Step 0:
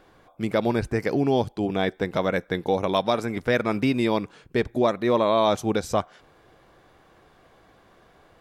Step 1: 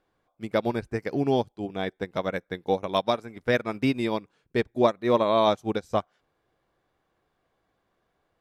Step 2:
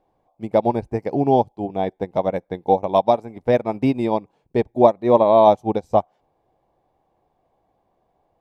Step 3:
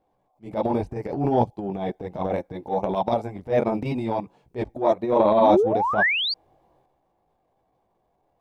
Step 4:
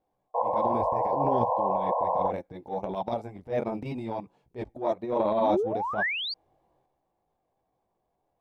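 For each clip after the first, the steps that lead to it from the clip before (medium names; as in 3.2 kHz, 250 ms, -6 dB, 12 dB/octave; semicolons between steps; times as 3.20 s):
upward expansion 2.5:1, over -31 dBFS; trim +2.5 dB
FFT filter 440 Hz 0 dB, 850 Hz +7 dB, 1.4 kHz -14 dB, 2.3 kHz -8 dB, 3.3 kHz -10 dB; trim +5.5 dB
chorus voices 2, 0.69 Hz, delay 19 ms, depth 4 ms; painted sound rise, 5.40–6.34 s, 210–4800 Hz -25 dBFS; transient shaper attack -11 dB, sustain +8 dB
painted sound noise, 0.34–2.31 s, 470–1100 Hz -19 dBFS; trim -7.5 dB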